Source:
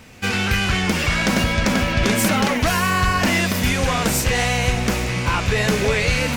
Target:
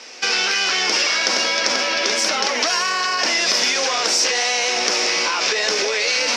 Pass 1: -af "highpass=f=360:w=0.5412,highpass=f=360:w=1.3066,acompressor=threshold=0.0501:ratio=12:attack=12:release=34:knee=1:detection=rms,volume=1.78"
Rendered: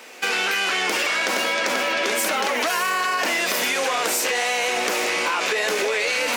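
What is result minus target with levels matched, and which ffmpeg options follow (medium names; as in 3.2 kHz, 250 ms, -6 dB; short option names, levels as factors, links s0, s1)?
4 kHz band -3.5 dB
-af "highpass=f=360:w=0.5412,highpass=f=360:w=1.3066,acompressor=threshold=0.0501:ratio=12:attack=12:release=34:knee=1:detection=rms,lowpass=f=5400:t=q:w=5.4,volume=1.78"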